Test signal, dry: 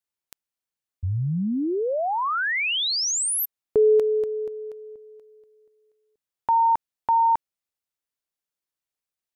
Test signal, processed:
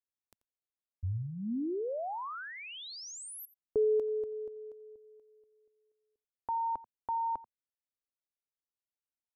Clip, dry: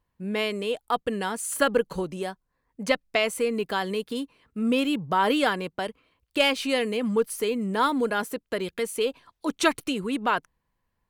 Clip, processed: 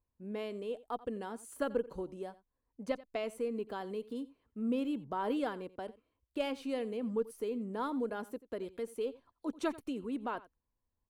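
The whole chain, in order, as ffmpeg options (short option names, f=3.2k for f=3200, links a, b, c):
-filter_complex "[0:a]firequalizer=gain_entry='entry(100,0);entry(160,-10);entry(230,-1);entry(1900,-13)':delay=0.05:min_phase=1,asplit=2[a][b];[b]aecho=0:1:87:0.112[c];[a][c]amix=inputs=2:normalize=0,volume=-7.5dB"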